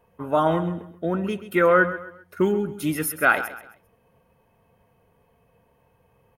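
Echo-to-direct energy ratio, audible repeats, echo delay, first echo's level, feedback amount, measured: −12.5 dB, 3, 132 ms, −13.0 dB, 34%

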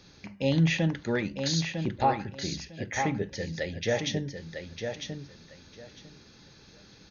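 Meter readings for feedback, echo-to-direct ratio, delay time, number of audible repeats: 19%, −6.5 dB, 952 ms, 2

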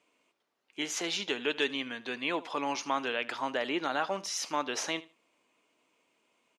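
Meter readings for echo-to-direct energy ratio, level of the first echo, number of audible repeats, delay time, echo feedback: −19.0 dB, −19.0 dB, 2, 77 ms, 19%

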